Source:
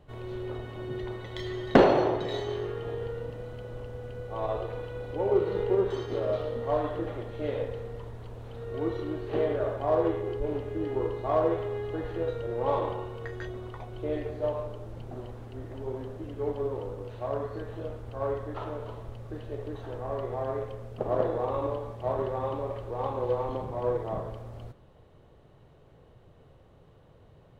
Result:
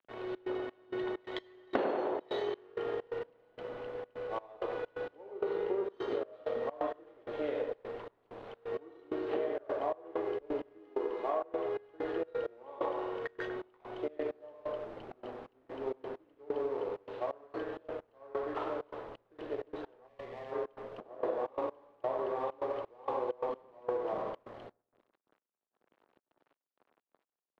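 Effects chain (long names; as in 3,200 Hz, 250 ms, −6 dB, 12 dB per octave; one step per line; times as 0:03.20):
0:10.79–0:11.42: parametric band 110 Hz −14.5 dB 0.8 octaves
dead-zone distortion −50 dBFS
three-way crossover with the lows and the highs turned down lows −22 dB, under 240 Hz, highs −17 dB, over 4,200 Hz
on a send: bucket-brigade delay 97 ms, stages 1,024, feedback 31%, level −6 dB
on the sum: gate pattern "xxx.xx..xx.x...x" 130 BPM −24 dB
downward compressor 5 to 1, threshold −34 dBFS, peak gain reduction 17.5 dB
0:20.08–0:20.52: gain on a spectral selection 250–1,700 Hz −11 dB
level +3 dB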